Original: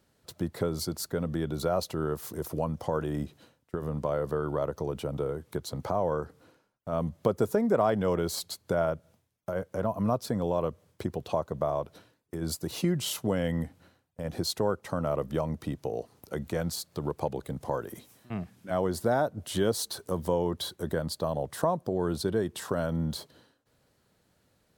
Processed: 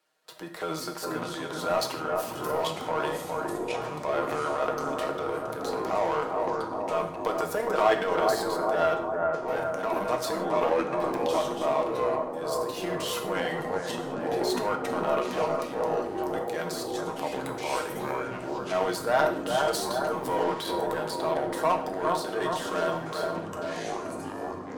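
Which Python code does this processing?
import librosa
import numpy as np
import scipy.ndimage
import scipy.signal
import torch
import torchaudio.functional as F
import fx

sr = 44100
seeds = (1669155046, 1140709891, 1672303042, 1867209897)

p1 = scipy.signal.sosfilt(scipy.signal.butter(2, 690.0, 'highpass', fs=sr, output='sos'), x)
p2 = fx.high_shelf(p1, sr, hz=4600.0, db=-7.0)
p3 = p2 + 0.66 * np.pad(p2, (int(6.4 * sr / 1000.0), 0))[:len(p2)]
p4 = fx.transient(p3, sr, attack_db=-4, sustain_db=8)
p5 = fx.power_curve(p4, sr, exponent=1.4)
p6 = p5 + fx.echo_bbd(p5, sr, ms=409, stages=4096, feedback_pct=56, wet_db=-4, dry=0)
p7 = fx.rev_gated(p6, sr, seeds[0], gate_ms=180, shape='falling', drr_db=4.5)
p8 = fx.echo_pitch(p7, sr, ms=225, semitones=-5, count=3, db_per_echo=-6.0)
p9 = fx.band_squash(p8, sr, depth_pct=40)
y = p9 * 10.0 ** (8.5 / 20.0)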